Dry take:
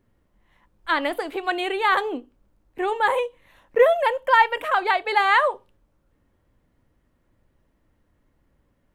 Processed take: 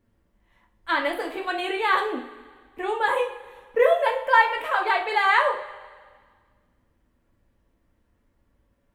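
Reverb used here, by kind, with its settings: two-slope reverb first 0.35 s, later 1.7 s, from -16 dB, DRR 0.5 dB; gain -4 dB

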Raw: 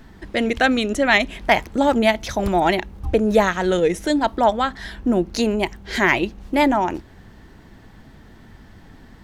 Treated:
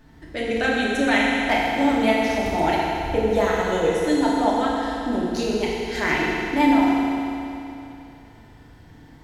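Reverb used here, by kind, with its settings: FDN reverb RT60 2.9 s, high-frequency decay 1×, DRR -5.5 dB; gain -9 dB

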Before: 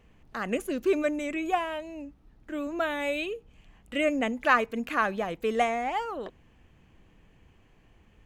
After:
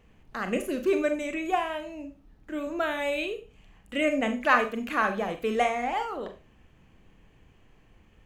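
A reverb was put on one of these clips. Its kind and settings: Schroeder reverb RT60 0.31 s, combs from 29 ms, DRR 6.5 dB

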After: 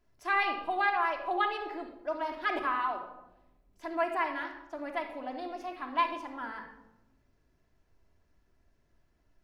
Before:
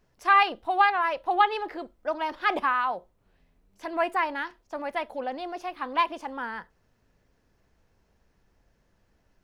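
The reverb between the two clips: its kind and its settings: shoebox room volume 3700 m³, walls furnished, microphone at 3 m; gain -8 dB

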